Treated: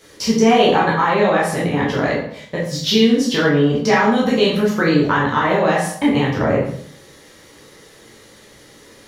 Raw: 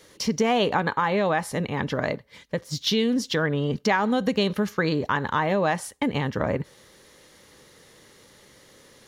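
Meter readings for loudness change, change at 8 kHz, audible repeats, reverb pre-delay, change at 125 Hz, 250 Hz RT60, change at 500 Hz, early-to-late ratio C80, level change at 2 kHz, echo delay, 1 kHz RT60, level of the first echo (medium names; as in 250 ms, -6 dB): +8.5 dB, +7.0 dB, no echo, 9 ms, +7.0 dB, 0.70 s, +9.0 dB, 7.5 dB, +7.5 dB, no echo, 0.60 s, no echo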